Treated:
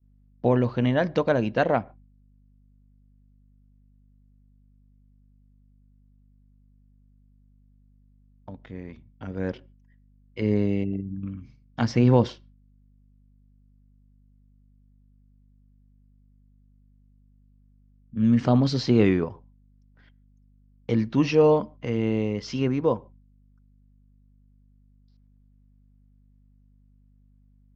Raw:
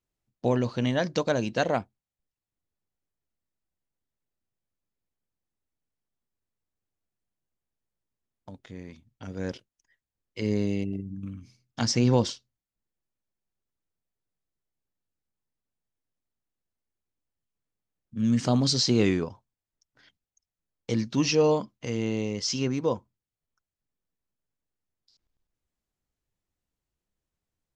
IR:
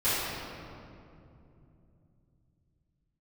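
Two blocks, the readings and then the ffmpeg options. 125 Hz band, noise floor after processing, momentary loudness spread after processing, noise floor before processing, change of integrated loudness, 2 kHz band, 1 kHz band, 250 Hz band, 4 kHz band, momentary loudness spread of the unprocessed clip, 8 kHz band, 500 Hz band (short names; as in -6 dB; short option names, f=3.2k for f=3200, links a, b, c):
+4.0 dB, -58 dBFS, 21 LU, under -85 dBFS, +3.0 dB, +2.0 dB, +3.5 dB, +3.5 dB, -7.0 dB, 21 LU, under -10 dB, +4.0 dB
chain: -filter_complex "[0:a]lowpass=2.4k,aeval=exprs='val(0)+0.00178*(sin(2*PI*50*n/s)+sin(2*PI*2*50*n/s)/2+sin(2*PI*3*50*n/s)/3+sin(2*PI*4*50*n/s)/4+sin(2*PI*5*50*n/s)/5)':c=same,agate=range=-33dB:threshold=-51dB:ratio=3:detection=peak,asplit=2[a][b];[1:a]atrim=start_sample=2205,afade=t=out:st=0.2:d=0.01,atrim=end_sample=9261,highshelf=f=3.6k:g=-11.5[c];[b][c]afir=irnorm=-1:irlink=0,volume=-34.5dB[d];[a][d]amix=inputs=2:normalize=0,volume=3.5dB"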